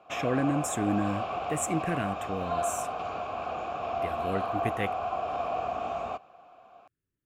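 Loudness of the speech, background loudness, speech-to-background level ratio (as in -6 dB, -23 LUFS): -32.5 LUFS, -33.0 LUFS, 0.5 dB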